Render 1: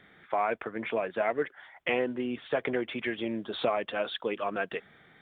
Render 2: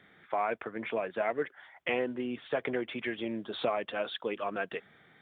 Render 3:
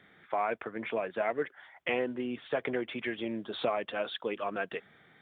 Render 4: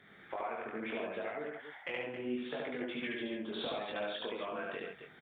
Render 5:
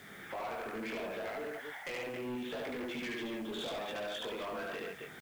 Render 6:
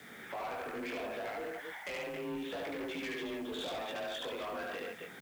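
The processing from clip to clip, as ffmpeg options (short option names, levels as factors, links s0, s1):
-af "highpass=60,volume=0.75"
-af anull
-filter_complex "[0:a]acompressor=threshold=0.0126:ratio=6,flanger=delay=19.5:depth=2.9:speed=0.75,asplit=2[s0][s1];[s1]aecho=0:1:72.89|137|271.1:0.891|0.501|0.355[s2];[s0][s2]amix=inputs=2:normalize=0,volume=1.33"
-filter_complex "[0:a]asplit=2[s0][s1];[s1]acompressor=threshold=0.00355:ratio=6,volume=0.841[s2];[s0][s2]amix=inputs=2:normalize=0,asoftclip=type=tanh:threshold=0.0126,acrusher=bits=9:mix=0:aa=0.000001,volume=1.33"
-af "afreqshift=29"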